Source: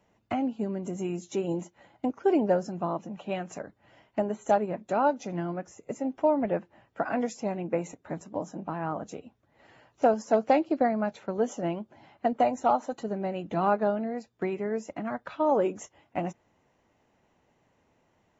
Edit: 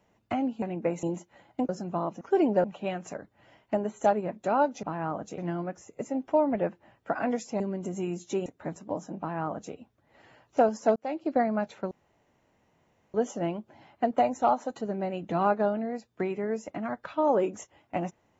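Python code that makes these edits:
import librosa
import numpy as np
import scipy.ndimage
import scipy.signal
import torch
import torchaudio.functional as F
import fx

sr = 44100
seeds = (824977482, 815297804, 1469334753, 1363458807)

y = fx.edit(x, sr, fx.swap(start_s=0.62, length_s=0.86, other_s=7.5, other_length_s=0.41),
    fx.move(start_s=2.14, length_s=0.43, to_s=3.09),
    fx.duplicate(start_s=8.64, length_s=0.55, to_s=5.28),
    fx.fade_in_span(start_s=10.41, length_s=0.44),
    fx.insert_room_tone(at_s=11.36, length_s=1.23), tone=tone)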